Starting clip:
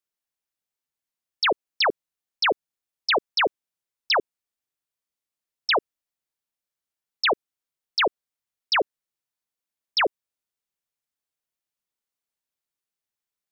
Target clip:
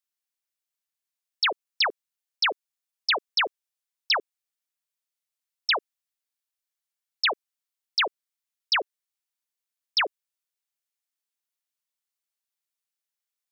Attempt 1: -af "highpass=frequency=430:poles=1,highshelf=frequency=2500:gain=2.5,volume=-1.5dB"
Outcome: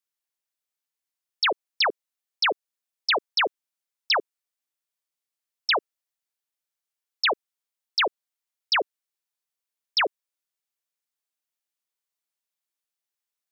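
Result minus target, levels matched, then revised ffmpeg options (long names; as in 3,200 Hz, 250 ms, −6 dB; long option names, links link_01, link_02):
500 Hz band +4.0 dB
-af "highpass=frequency=1100:poles=1,highshelf=frequency=2500:gain=2.5,volume=-1.5dB"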